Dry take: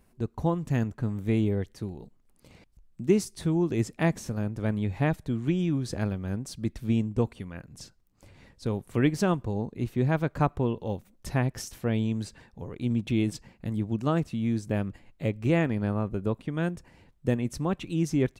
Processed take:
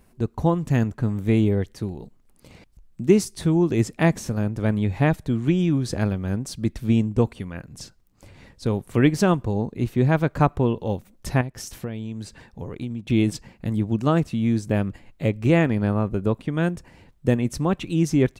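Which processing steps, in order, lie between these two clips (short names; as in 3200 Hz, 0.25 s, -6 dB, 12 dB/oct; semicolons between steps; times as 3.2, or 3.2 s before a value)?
11.41–13.1 compressor 6:1, threshold -34 dBFS, peak gain reduction 12 dB; gain +6 dB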